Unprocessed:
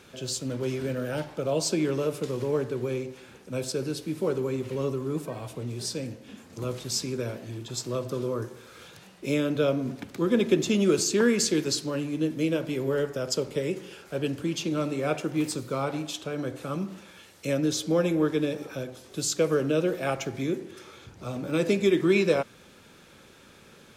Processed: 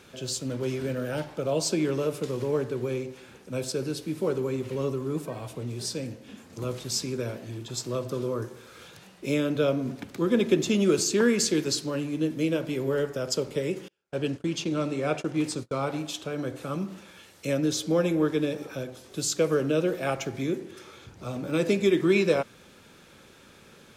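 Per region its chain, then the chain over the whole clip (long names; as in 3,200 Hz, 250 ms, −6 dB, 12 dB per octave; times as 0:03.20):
0:13.88–0:15.83: low-pass filter 9,400 Hz + noise gate −38 dBFS, range −35 dB
whole clip: no processing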